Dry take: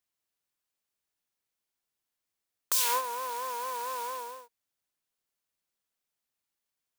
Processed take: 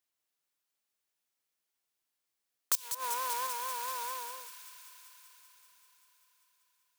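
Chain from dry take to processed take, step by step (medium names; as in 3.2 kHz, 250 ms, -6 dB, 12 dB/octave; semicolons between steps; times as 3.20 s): bass shelf 150 Hz -9 dB; 2.75–3.47 s: compressor with a negative ratio -35 dBFS, ratio -0.5; dynamic bell 460 Hz, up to -8 dB, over -50 dBFS, Q 0.71; on a send: feedback echo behind a high-pass 194 ms, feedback 77%, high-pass 1.8 kHz, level -8 dB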